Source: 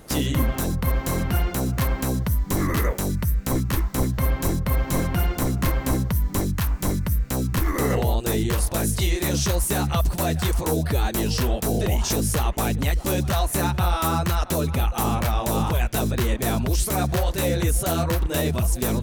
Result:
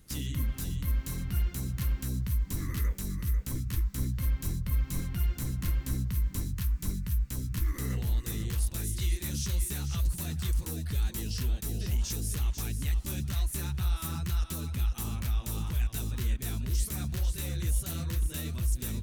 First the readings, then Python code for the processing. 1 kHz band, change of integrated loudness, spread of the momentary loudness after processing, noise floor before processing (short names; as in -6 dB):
-21.5 dB, -9.0 dB, 2 LU, -34 dBFS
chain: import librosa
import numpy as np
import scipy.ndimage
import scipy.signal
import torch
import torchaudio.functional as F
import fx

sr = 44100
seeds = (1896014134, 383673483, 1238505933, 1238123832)

y = fx.tone_stack(x, sr, knobs='6-0-2')
y = y + 10.0 ** (-8.5 / 20.0) * np.pad(y, (int(496 * sr / 1000.0), 0))[:len(y)]
y = y * librosa.db_to_amplitude(4.5)